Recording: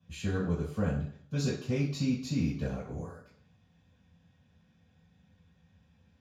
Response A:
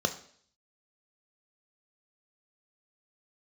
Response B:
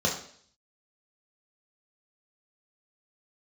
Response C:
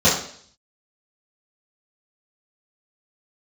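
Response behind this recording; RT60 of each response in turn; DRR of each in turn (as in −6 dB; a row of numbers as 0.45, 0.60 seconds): C; 0.55, 0.55, 0.55 seconds; 7.0, −2.5, −12.0 decibels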